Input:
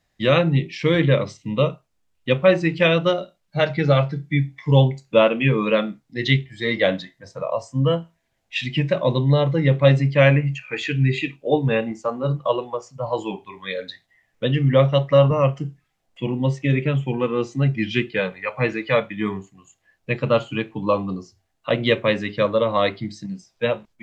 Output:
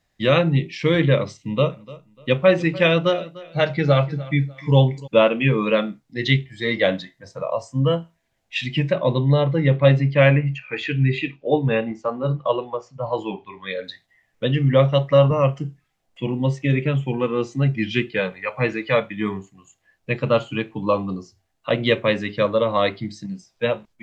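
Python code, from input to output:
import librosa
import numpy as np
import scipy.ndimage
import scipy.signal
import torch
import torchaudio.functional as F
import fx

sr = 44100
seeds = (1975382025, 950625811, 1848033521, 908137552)

y = fx.echo_feedback(x, sr, ms=297, feedback_pct=30, wet_db=-19.5, at=(1.7, 5.06), fade=0.02)
y = fx.lowpass(y, sr, hz=4200.0, slope=12, at=(8.91, 13.84))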